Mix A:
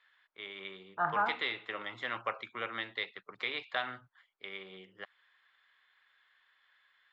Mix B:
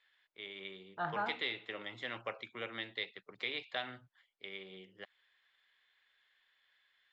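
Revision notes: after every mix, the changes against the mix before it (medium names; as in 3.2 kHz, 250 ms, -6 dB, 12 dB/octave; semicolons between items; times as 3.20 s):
second voice: remove low-pass 1.9 kHz 12 dB/octave; master: add peaking EQ 1.2 kHz -10 dB 1.2 oct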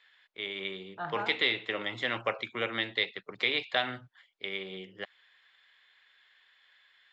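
first voice +10.0 dB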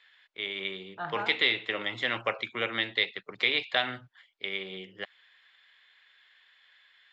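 master: add peaking EQ 2.7 kHz +3 dB 2 oct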